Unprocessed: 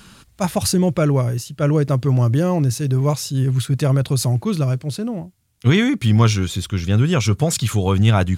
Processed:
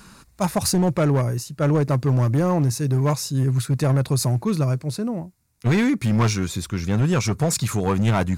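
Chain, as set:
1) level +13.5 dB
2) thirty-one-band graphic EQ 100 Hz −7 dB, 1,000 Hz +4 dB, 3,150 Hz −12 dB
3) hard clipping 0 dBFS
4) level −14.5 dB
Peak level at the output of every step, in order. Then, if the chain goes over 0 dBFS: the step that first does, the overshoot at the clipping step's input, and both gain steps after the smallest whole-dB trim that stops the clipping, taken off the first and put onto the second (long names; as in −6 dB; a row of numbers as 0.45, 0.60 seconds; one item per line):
+9.5, +9.5, 0.0, −14.5 dBFS
step 1, 9.5 dB
step 1 +3.5 dB, step 4 −4.5 dB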